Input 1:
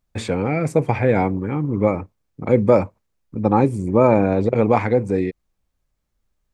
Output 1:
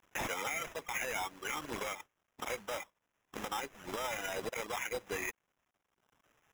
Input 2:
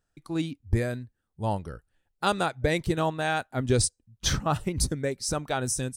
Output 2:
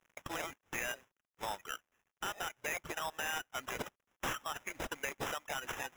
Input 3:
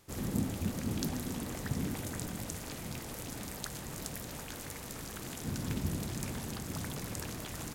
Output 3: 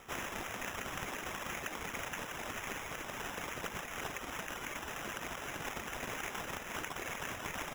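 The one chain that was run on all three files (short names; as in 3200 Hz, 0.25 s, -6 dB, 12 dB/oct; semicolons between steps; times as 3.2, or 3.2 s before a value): CVSD 32 kbps; reverb removal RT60 1.1 s; HPF 1300 Hz 12 dB/oct; bell 3800 Hz +3 dB 1.9 oct; compressor 6:1, threshold -41 dBFS; limiter -36.5 dBFS; sample-and-hold 10×; gain +9.5 dB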